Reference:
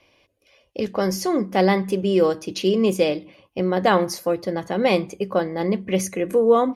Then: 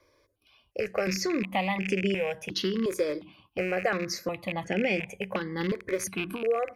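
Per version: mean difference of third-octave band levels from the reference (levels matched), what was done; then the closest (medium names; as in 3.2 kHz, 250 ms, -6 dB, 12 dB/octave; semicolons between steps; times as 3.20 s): 6.0 dB: rattle on loud lows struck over -30 dBFS, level -20 dBFS; compression, threshold -21 dBFS, peak gain reduction 10 dB; dynamic bell 2.2 kHz, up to +6 dB, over -46 dBFS, Q 1.1; stepped phaser 2.8 Hz 760–3900 Hz; trim -1 dB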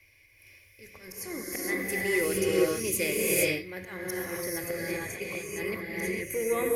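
13.5 dB: FFT filter 110 Hz 0 dB, 200 Hz -21 dB, 340 Hz -12 dB, 760 Hz -20 dB, 1.3 kHz -15 dB, 2.1 kHz +5 dB, 3.1 kHz -14 dB, 12 kHz +11 dB; slow attack 417 ms; in parallel at -11 dB: hard clipper -30.5 dBFS, distortion -11 dB; on the sum: gated-style reverb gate 490 ms rising, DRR -5.5 dB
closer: first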